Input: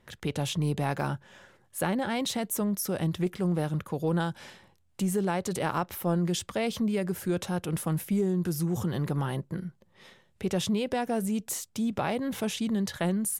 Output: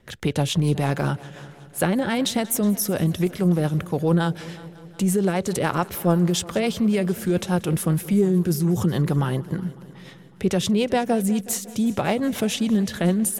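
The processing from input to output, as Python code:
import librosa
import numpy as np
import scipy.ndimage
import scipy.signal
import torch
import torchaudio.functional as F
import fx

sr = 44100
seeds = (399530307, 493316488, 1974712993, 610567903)

y = fx.rotary(x, sr, hz=7.0)
y = fx.echo_heads(y, sr, ms=184, heads='first and second', feedback_pct=59, wet_db=-22.5)
y = y * 10.0 ** (9.0 / 20.0)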